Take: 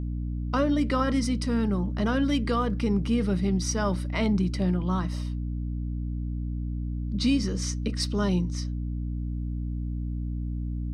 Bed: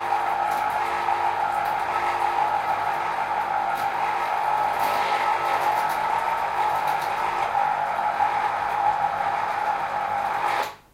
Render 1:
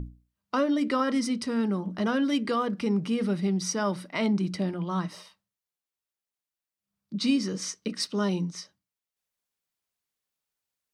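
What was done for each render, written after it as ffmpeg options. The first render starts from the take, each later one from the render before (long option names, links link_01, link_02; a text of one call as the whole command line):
ffmpeg -i in.wav -af "bandreject=frequency=60:width_type=h:width=6,bandreject=frequency=120:width_type=h:width=6,bandreject=frequency=180:width_type=h:width=6,bandreject=frequency=240:width_type=h:width=6,bandreject=frequency=300:width_type=h:width=6" out.wav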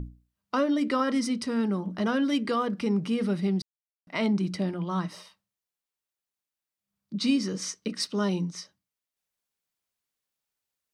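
ffmpeg -i in.wav -filter_complex "[0:a]asplit=3[link_01][link_02][link_03];[link_01]atrim=end=3.62,asetpts=PTS-STARTPTS,afade=type=out:start_time=3.616:duration=0.004:curve=hsin[link_04];[link_02]atrim=start=3.62:end=4.07,asetpts=PTS-STARTPTS,volume=0[link_05];[link_03]atrim=start=4.07,asetpts=PTS-STARTPTS,afade=type=in:duration=0.004:curve=hsin[link_06];[link_04][link_05][link_06]concat=n=3:v=0:a=1" out.wav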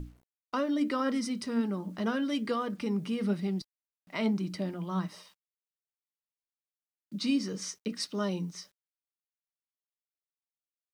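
ffmpeg -i in.wav -af "flanger=delay=3.2:depth=2:regen=76:speed=1.1:shape=sinusoidal,acrusher=bits=10:mix=0:aa=0.000001" out.wav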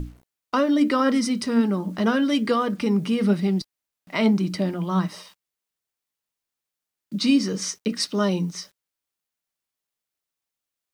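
ffmpeg -i in.wav -af "volume=9.5dB" out.wav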